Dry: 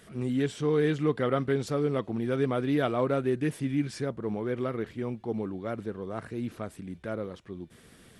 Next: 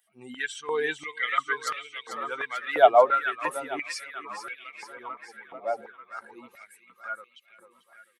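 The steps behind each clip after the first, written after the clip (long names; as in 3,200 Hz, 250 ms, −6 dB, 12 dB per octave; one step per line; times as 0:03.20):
spectral dynamics exaggerated over time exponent 2
on a send: repeating echo 443 ms, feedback 59%, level −9 dB
on the sum: high-pass on a step sequencer 2.9 Hz 710–2,500 Hz
level +8.5 dB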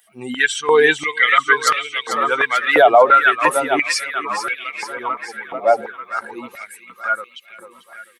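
boost into a limiter +16 dB
level −1 dB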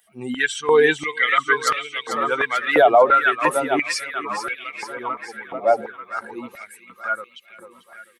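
low-shelf EQ 460 Hz +7 dB
level −5 dB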